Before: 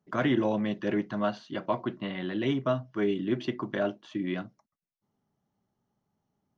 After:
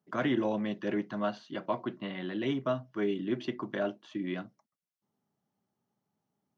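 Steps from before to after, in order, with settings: high-pass 130 Hz 12 dB/octave; trim -3 dB

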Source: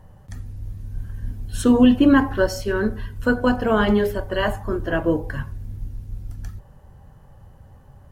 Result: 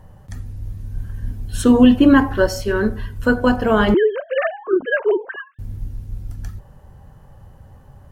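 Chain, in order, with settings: 3.94–5.59 s: formants replaced by sine waves; trim +3 dB

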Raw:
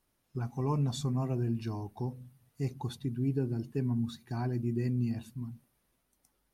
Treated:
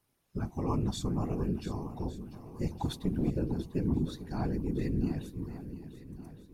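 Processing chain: 2.79–3.30 s: waveshaping leveller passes 1; whisper effect; shuffle delay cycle 1158 ms, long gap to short 1.5:1, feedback 38%, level -13.5 dB

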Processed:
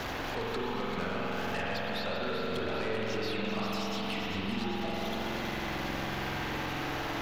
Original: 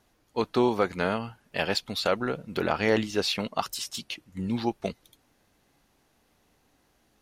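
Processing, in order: jump at every zero crossing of -36 dBFS; bass shelf 420 Hz -7.5 dB; compression, threshold -35 dBFS, peak gain reduction 14 dB; boxcar filter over 5 samples; saturation -37 dBFS, distortion -9 dB; echo whose repeats swap between lows and highs 195 ms, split 1.4 kHz, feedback 73%, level -6.5 dB; spring tank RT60 3.4 s, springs 45 ms, chirp 75 ms, DRR -4.5 dB; three bands compressed up and down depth 70%; trim +3 dB

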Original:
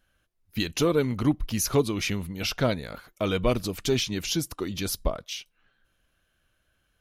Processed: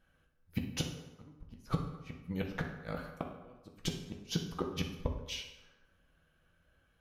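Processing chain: treble shelf 2.8 kHz -11 dB; inverted gate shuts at -20 dBFS, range -37 dB; reverberation RT60 1.1 s, pre-delay 3 ms, DRR 1.5 dB

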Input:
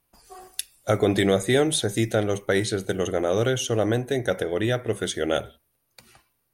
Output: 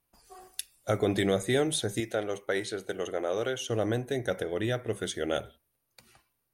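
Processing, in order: 2.00–3.70 s: tone controls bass -12 dB, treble -4 dB; trim -6 dB

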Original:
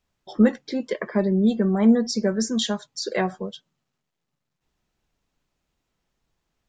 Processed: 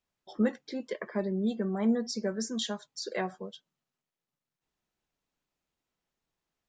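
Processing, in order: bass shelf 130 Hz -9.5 dB; trim -8 dB

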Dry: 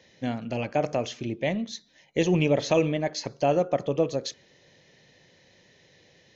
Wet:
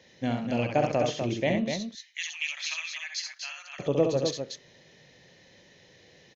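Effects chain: 1.70–3.79 s: inverse Chebyshev high-pass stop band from 460 Hz, stop band 60 dB; loudspeakers at several distances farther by 23 m -5 dB, 85 m -6 dB

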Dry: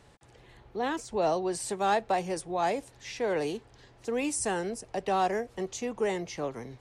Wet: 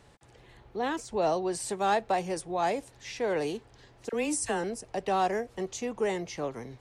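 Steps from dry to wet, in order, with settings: 4.09–4.64 s: phase dispersion lows, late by 41 ms, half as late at 1.2 kHz

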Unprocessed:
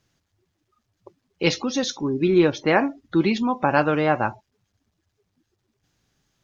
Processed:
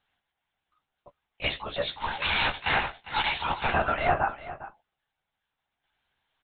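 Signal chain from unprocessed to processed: 1.97–3.72 s: formants flattened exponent 0.3; peak limiter -9 dBFS, peak gain reduction 5 dB; steep high-pass 530 Hz 96 dB/octave; LPC vocoder at 8 kHz whisper; doubling 14 ms -9 dB; delay 403 ms -15 dB; trim -1.5 dB

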